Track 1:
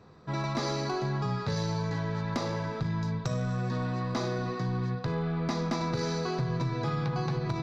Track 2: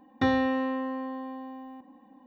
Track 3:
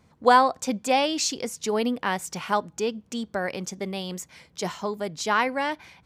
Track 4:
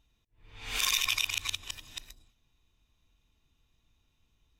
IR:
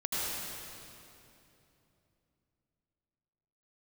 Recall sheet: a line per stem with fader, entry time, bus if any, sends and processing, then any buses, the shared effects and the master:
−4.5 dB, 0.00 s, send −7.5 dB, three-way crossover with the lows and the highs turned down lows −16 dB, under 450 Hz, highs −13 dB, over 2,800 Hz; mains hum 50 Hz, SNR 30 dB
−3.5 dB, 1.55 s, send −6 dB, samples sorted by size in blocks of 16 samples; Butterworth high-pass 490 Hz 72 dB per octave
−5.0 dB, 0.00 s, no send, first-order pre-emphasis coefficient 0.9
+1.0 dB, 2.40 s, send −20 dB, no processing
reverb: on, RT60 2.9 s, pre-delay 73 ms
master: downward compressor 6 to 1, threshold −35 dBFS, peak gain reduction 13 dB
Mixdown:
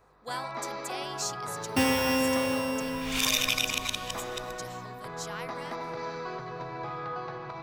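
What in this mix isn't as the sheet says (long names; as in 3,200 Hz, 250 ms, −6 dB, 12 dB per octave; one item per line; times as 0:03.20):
stem 2: missing Butterworth high-pass 490 Hz 72 dB per octave
master: missing downward compressor 6 to 1, threshold −35 dBFS, peak gain reduction 13 dB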